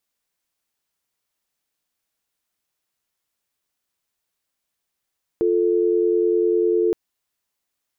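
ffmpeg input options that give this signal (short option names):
-f lavfi -i "aevalsrc='0.119*(sin(2*PI*350*t)+sin(2*PI*440*t))':d=1.52:s=44100"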